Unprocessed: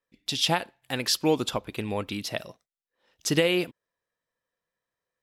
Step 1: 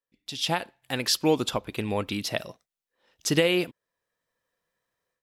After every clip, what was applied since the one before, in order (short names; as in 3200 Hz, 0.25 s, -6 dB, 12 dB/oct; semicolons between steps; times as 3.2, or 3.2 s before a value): AGC gain up to 14 dB; gain -8.5 dB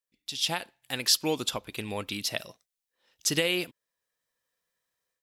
high shelf 2300 Hz +10.5 dB; gain -7 dB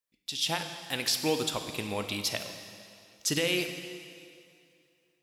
limiter -16.5 dBFS, peak gain reduction 8.5 dB; dark delay 0.114 s, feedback 77%, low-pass 1800 Hz, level -22 dB; reverb RT60 2.3 s, pre-delay 20 ms, DRR 6.5 dB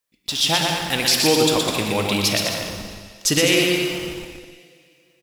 in parallel at -12 dB: Schmitt trigger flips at -42 dBFS; on the sum: bouncing-ball echo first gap 0.12 s, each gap 0.7×, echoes 5; gain +9 dB